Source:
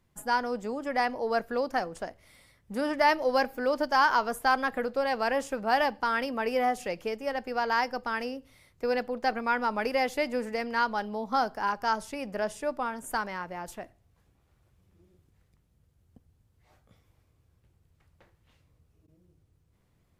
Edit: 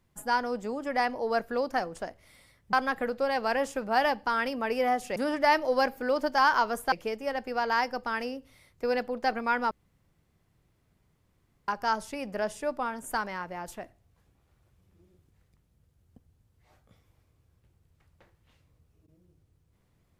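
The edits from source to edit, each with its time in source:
2.73–4.49 s: move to 6.92 s
9.71–11.68 s: room tone

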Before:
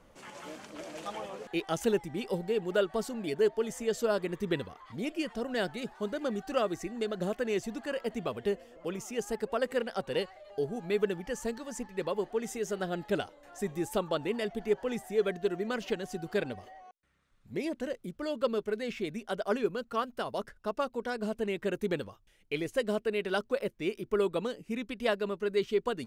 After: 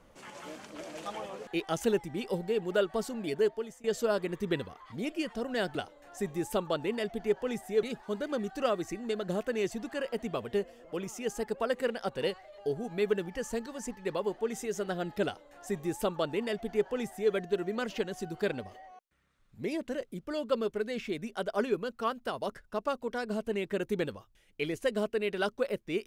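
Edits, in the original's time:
3.39–3.84 s: fade out, to -23 dB
13.16–15.24 s: copy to 5.75 s

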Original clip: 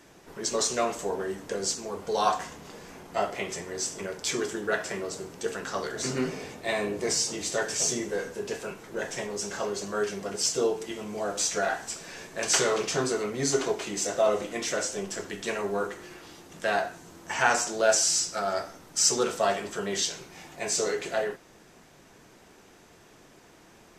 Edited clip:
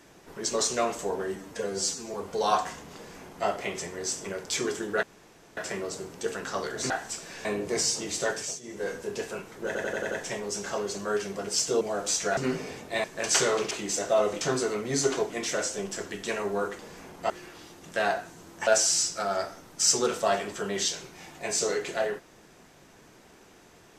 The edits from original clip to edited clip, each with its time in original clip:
1.36–1.88 s: stretch 1.5×
2.70–3.21 s: copy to 15.98 s
4.77 s: insert room tone 0.54 s
6.10–6.77 s: swap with 11.68–12.23 s
7.63–8.22 s: dip -19 dB, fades 0.29 s
8.98 s: stutter 0.09 s, 6 plays
10.68–11.12 s: delete
13.79–14.49 s: move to 12.90 s
17.35–17.84 s: delete

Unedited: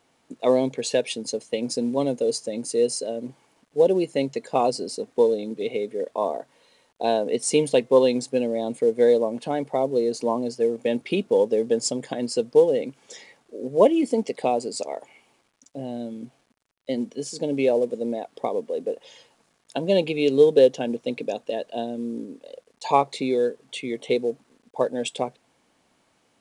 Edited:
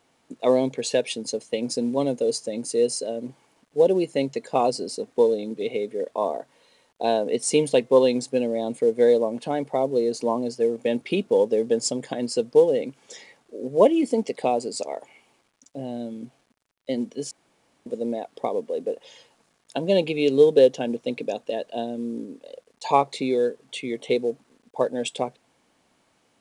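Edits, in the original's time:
17.31–17.86 s: room tone

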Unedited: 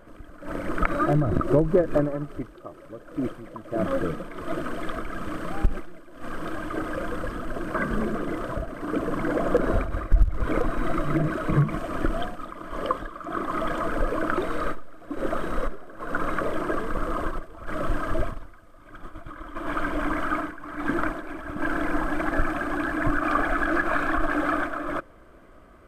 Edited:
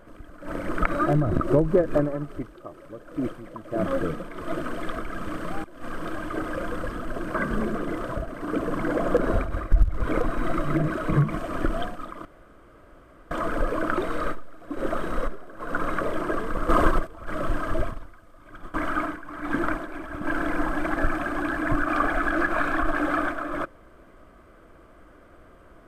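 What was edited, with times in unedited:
5.64–6.04 s: delete
12.65–13.71 s: room tone
17.09–17.47 s: gain +9 dB
19.14–20.09 s: delete

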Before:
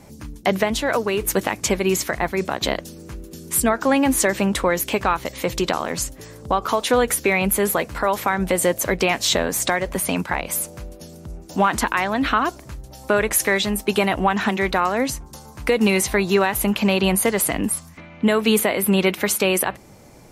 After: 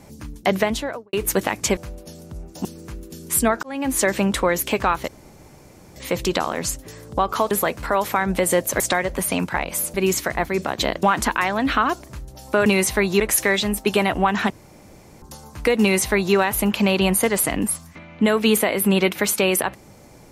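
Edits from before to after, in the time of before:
0.66–1.13 s: studio fade out
1.77–2.86 s: swap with 10.71–11.59 s
3.84–4.27 s: fade in
5.29 s: insert room tone 0.88 s
6.84–7.63 s: delete
8.92–9.57 s: delete
14.52–15.24 s: room tone
15.83–16.37 s: copy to 13.22 s

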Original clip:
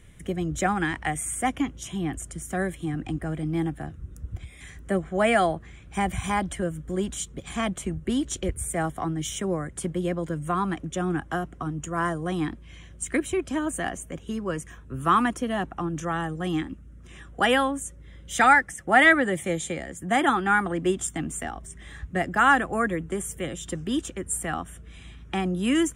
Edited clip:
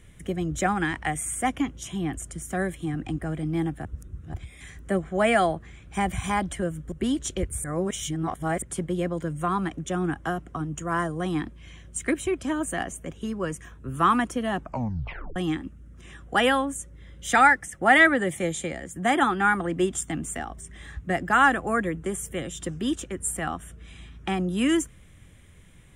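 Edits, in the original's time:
3.85–4.34 s: reverse
6.92–7.98 s: delete
8.70–9.68 s: reverse
15.65 s: tape stop 0.77 s

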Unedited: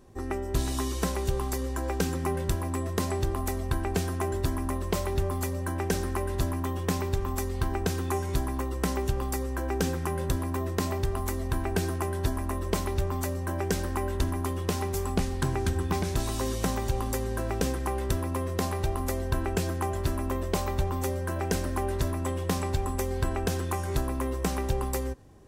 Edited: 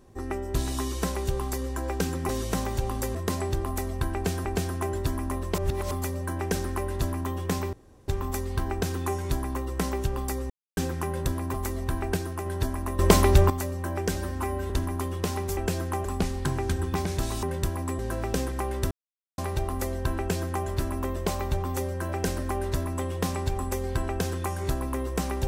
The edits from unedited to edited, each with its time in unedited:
2.29–2.85 s: swap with 16.40–17.26 s
3.84–4.15 s: loop, 2 plays
4.97–5.30 s: reverse
7.12 s: insert room tone 0.35 s
9.54–9.81 s: mute
10.58–11.17 s: delete
11.80–12.09 s: gain -3 dB
12.62–13.13 s: gain +10.5 dB
13.79–14.15 s: stretch 1.5×
18.18–18.65 s: mute
19.46–19.94 s: copy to 15.02 s

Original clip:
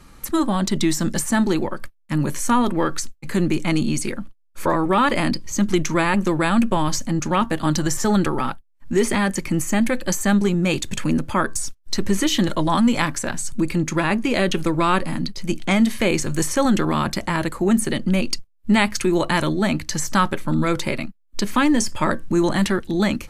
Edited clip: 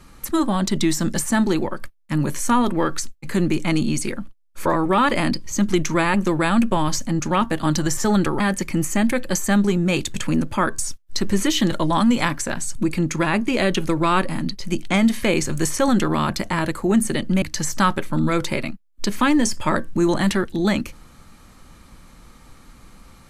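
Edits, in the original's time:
8.40–9.17 s: delete
18.19–19.77 s: delete

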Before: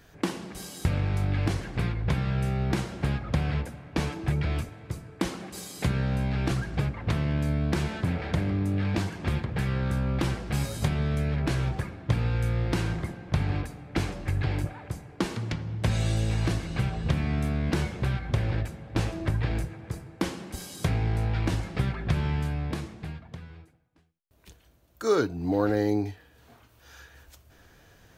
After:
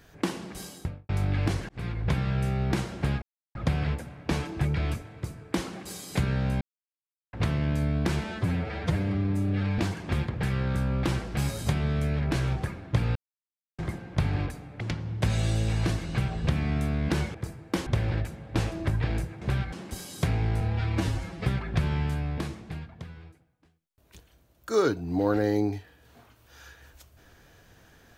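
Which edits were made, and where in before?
0.60–1.09 s: studio fade out
1.69–2.12 s: fade in equal-power
3.22 s: insert silence 0.33 s
6.28–7.00 s: mute
7.91–8.94 s: stretch 1.5×
12.31–12.94 s: mute
13.96–15.42 s: delete
17.96–18.27 s: swap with 19.82–20.34 s
21.22–21.79 s: stretch 1.5×

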